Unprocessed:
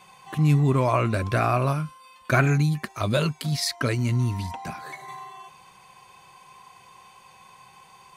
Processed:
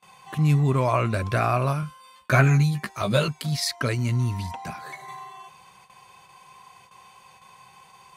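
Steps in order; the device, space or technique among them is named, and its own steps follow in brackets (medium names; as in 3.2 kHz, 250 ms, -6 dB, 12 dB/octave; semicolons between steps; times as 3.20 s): 1.81–3.28 s: doubling 15 ms -4 dB; high-pass 70 Hz 6 dB/octave; low shelf boost with a cut just above (bass shelf 61 Hz +6 dB; peaking EQ 300 Hz -4 dB 0.59 oct); gate with hold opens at -42 dBFS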